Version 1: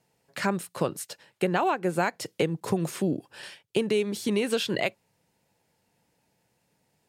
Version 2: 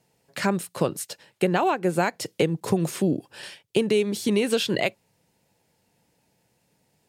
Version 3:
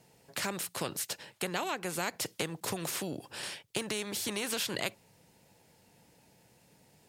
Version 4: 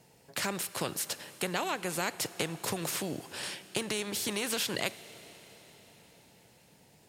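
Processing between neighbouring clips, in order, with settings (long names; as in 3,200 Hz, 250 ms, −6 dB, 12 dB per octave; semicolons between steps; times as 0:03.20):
parametric band 1,300 Hz −3 dB 1.6 octaves; level +4 dB
every bin compressed towards the loudest bin 2 to 1; level −9 dB
convolution reverb RT60 5.2 s, pre-delay 32 ms, DRR 15 dB; level +1.5 dB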